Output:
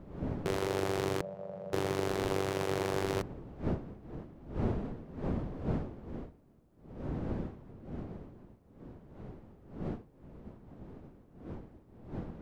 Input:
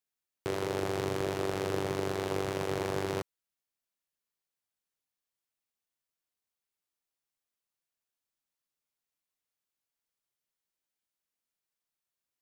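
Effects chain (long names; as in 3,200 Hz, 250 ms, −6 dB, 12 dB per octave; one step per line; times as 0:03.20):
wind on the microphone 290 Hz −41 dBFS
0:01.21–0:01.73: pair of resonant band-passes 320 Hz, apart 1.7 octaves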